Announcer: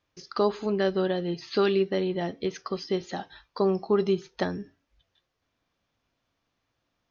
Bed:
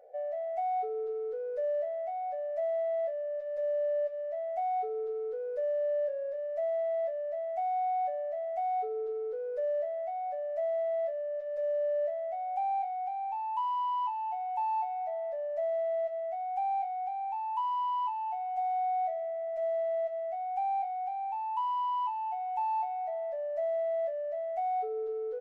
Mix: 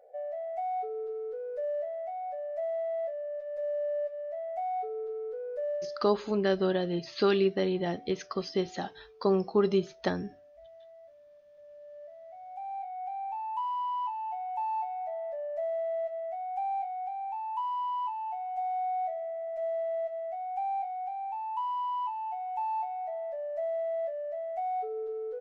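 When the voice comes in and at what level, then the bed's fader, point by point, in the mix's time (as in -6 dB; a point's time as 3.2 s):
5.65 s, -1.5 dB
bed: 5.75 s -1.5 dB
6.18 s -21.5 dB
11.67 s -21.5 dB
13.15 s -1 dB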